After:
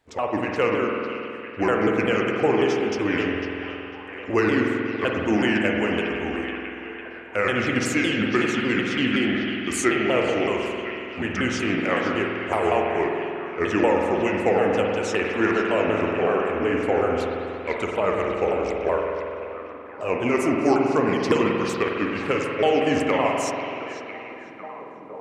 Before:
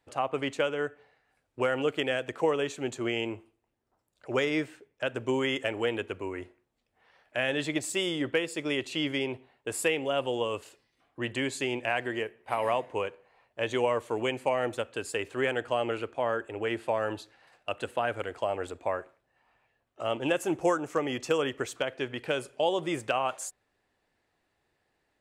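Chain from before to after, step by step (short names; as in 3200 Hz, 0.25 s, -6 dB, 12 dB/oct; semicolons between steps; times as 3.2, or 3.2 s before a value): repeated pitch sweeps -6.5 st, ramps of 0.187 s; delay with a stepping band-pass 0.501 s, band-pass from 3400 Hz, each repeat -0.7 oct, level -6.5 dB; reverb RT60 2.8 s, pre-delay 47 ms, DRR 0 dB; gain +6 dB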